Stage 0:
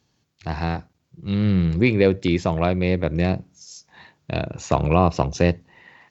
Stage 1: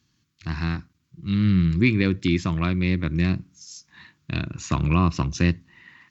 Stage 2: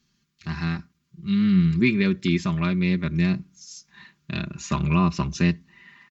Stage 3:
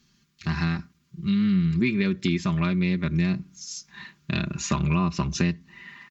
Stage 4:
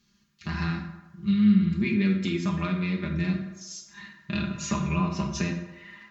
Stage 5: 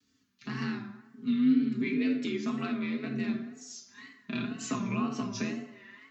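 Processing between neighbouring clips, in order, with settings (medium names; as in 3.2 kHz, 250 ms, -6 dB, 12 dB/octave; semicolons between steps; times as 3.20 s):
high-order bell 600 Hz -15.5 dB 1.3 oct
comb 5 ms, depth 81%; trim -2.5 dB
compression 3:1, threshold -28 dBFS, peak gain reduction 10 dB; trim +5.5 dB
reverberation RT60 1.1 s, pre-delay 5 ms, DRR 0.5 dB; trim -5.5 dB
frequency shift +51 Hz; vibrato 2 Hz 98 cents; trim -5 dB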